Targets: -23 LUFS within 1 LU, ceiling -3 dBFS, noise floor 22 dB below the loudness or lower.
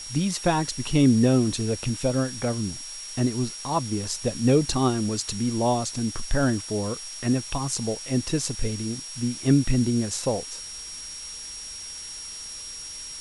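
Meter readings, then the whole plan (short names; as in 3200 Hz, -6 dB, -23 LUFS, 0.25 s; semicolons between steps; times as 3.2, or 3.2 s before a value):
steady tone 5600 Hz; tone level -37 dBFS; noise floor -38 dBFS; noise floor target -48 dBFS; loudness -26.0 LUFS; peak -8.5 dBFS; loudness target -23.0 LUFS
-> notch 5600 Hz, Q 30; noise print and reduce 10 dB; gain +3 dB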